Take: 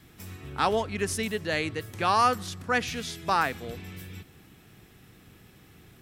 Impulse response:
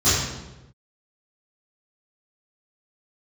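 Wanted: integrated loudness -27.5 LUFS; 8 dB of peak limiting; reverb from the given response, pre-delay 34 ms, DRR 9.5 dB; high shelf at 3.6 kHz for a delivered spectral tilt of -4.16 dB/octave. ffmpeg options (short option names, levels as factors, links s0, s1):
-filter_complex "[0:a]highshelf=f=3600:g=3,alimiter=limit=0.133:level=0:latency=1,asplit=2[s0][s1];[1:a]atrim=start_sample=2205,adelay=34[s2];[s1][s2]afir=irnorm=-1:irlink=0,volume=0.0376[s3];[s0][s3]amix=inputs=2:normalize=0,volume=1.33"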